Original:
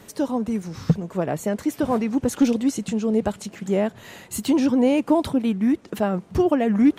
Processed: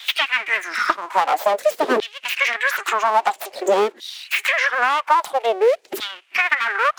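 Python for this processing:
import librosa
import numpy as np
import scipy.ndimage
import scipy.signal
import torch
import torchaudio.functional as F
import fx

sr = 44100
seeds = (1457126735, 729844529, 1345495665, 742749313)

p1 = fx.noise_reduce_blind(x, sr, reduce_db=14)
p2 = fx.rider(p1, sr, range_db=10, speed_s=0.5)
p3 = p1 + F.gain(torch.from_numpy(p2), 1.0).numpy()
p4 = np.abs(p3)
p5 = fx.filter_lfo_highpass(p4, sr, shape='saw_down', hz=0.5, low_hz=340.0, high_hz=3700.0, q=4.8)
p6 = fx.band_squash(p5, sr, depth_pct=100)
y = F.gain(torch.from_numpy(p6), -1.0).numpy()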